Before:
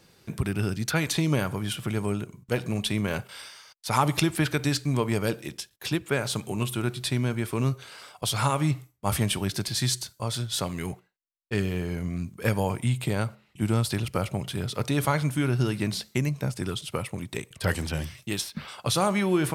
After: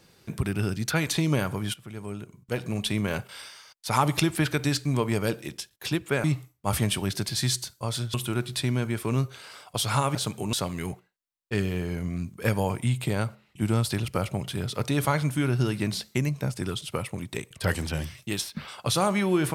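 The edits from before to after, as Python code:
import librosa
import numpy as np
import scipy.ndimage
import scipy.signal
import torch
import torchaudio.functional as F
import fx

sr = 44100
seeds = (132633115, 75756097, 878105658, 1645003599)

y = fx.edit(x, sr, fx.fade_in_from(start_s=1.74, length_s=1.18, floor_db=-16.5),
    fx.swap(start_s=6.24, length_s=0.38, other_s=8.63, other_length_s=1.9), tone=tone)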